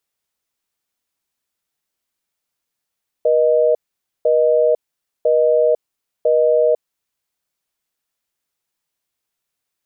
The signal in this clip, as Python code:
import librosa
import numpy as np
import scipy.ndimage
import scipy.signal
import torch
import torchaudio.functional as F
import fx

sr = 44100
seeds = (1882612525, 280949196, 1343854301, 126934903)

y = fx.call_progress(sr, length_s=3.95, kind='busy tone', level_db=-14.0)